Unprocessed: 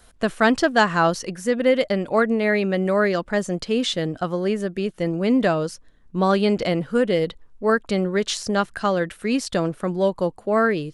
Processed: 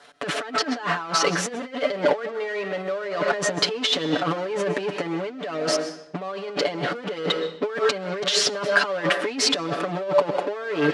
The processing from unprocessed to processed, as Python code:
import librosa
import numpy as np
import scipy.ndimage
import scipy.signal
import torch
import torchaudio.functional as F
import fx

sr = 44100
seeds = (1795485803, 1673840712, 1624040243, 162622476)

p1 = fx.fuzz(x, sr, gain_db=35.0, gate_db=-44.0)
p2 = x + (p1 * librosa.db_to_amplitude(-10.0))
p3 = fx.rev_freeverb(p2, sr, rt60_s=0.7, hf_ratio=0.9, predelay_ms=85, drr_db=13.0)
p4 = fx.over_compress(p3, sr, threshold_db=-22.0, ratio=-0.5)
p5 = fx.bandpass_edges(p4, sr, low_hz=350.0, high_hz=4400.0)
y = p5 + 0.83 * np.pad(p5, (int(6.9 * sr / 1000.0), 0))[:len(p5)]